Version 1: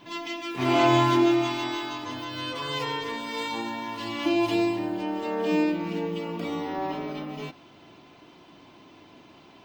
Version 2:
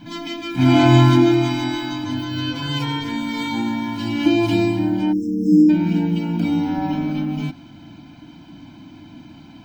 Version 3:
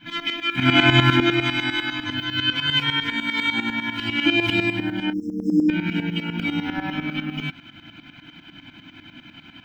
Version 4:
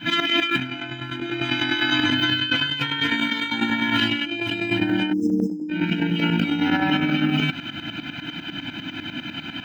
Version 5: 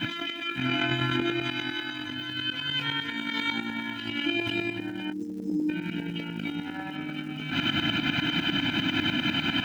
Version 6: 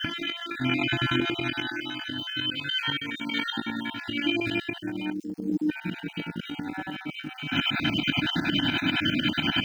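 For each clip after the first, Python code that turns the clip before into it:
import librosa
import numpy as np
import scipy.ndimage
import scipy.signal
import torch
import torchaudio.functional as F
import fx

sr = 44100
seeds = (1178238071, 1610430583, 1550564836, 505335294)

y1 = fx.spec_erase(x, sr, start_s=5.13, length_s=0.56, low_hz=500.0, high_hz=5100.0)
y1 = fx.low_shelf_res(y1, sr, hz=410.0, db=8.5, q=3.0)
y1 = y1 + 0.94 * np.pad(y1, (int(1.3 * sr / 1000.0), 0))[:len(y1)]
y1 = F.gain(torch.from_numpy(y1), 1.5).numpy()
y2 = fx.band_shelf(y1, sr, hz=2100.0, db=14.5, octaves=1.7)
y2 = fx.tremolo_shape(y2, sr, shape='saw_up', hz=10.0, depth_pct=80)
y2 = F.gain(torch.from_numpy(y2), -2.5).numpy()
y3 = fx.over_compress(y2, sr, threshold_db=-30.0, ratio=-1.0)
y3 = fx.notch_comb(y3, sr, f0_hz=1100.0)
y3 = F.gain(torch.from_numpy(y3), 7.0).numpy()
y4 = fx.over_compress(y3, sr, threshold_db=-31.0, ratio=-1.0)
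y4 = fx.dmg_crackle(y4, sr, seeds[0], per_s=350.0, level_db=-47.0)
y5 = fx.spec_dropout(y4, sr, seeds[1], share_pct=35)
y5 = F.gain(torch.from_numpy(y5), 2.5).numpy()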